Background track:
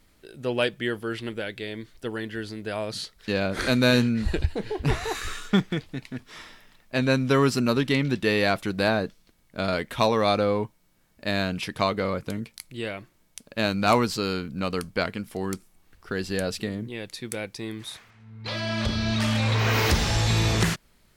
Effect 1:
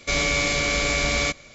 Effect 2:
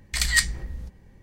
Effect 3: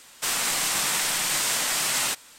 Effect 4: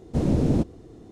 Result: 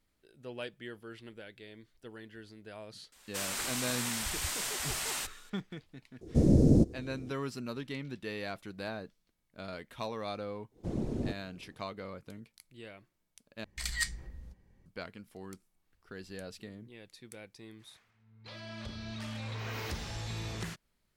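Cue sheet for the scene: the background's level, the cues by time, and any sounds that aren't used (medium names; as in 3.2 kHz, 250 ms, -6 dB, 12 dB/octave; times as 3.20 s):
background track -16.5 dB
3.12 s: add 3 -11 dB
6.21 s: add 4 -1 dB + high-order bell 1.7 kHz -13.5 dB 2.5 oct
10.70 s: add 4 -13 dB, fades 0.10 s + whisper effect
13.64 s: replace with 2 -12.5 dB
not used: 1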